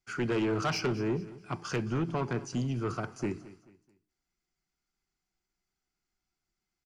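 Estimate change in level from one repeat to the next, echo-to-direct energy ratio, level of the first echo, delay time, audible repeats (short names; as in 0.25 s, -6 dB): -9.0 dB, -17.5 dB, -18.0 dB, 0.217 s, 2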